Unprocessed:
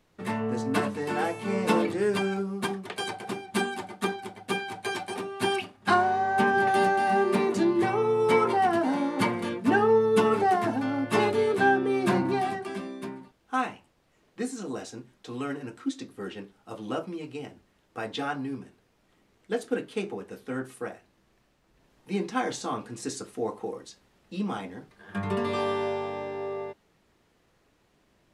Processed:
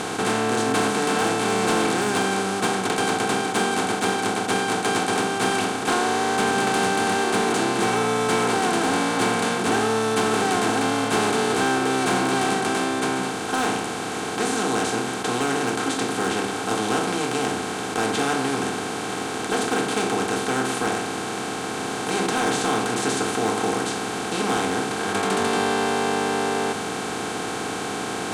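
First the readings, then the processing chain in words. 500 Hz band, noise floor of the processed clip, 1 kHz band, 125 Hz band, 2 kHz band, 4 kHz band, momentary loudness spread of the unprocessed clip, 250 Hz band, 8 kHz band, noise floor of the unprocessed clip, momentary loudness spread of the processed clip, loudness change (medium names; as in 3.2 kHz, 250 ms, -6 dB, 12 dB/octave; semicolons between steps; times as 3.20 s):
+3.5 dB, -29 dBFS, +5.5 dB, +5.0 dB, +7.5 dB, +12.0 dB, 16 LU, +5.0 dB, +17.0 dB, -67 dBFS, 6 LU, +5.0 dB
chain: spectral levelling over time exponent 0.2; graphic EQ 125/4000/8000 Hz +4/+4/+10 dB; hard clipper -7.5 dBFS, distortion -23 dB; hum notches 50/100/150/200/250/300/350 Hz; trim -6.5 dB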